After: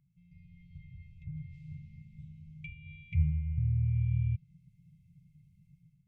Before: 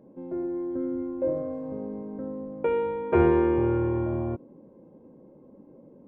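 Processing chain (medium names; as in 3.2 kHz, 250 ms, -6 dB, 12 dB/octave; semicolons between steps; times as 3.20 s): low-pass that closes with the level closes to 810 Hz, closed at -20 dBFS; level rider gain up to 10.5 dB; brick-wall FIR band-stop 170–2000 Hz; trim -5.5 dB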